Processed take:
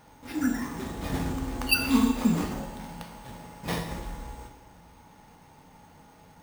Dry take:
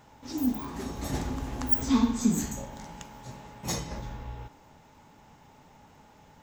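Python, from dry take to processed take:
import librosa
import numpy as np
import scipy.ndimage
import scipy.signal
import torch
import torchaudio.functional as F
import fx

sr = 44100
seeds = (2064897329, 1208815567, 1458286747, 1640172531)

y = np.repeat(x[::6], 6)[:len(x)]
y = fx.rev_double_slope(y, sr, seeds[0], early_s=0.78, late_s=2.9, knee_db=-18, drr_db=3.5)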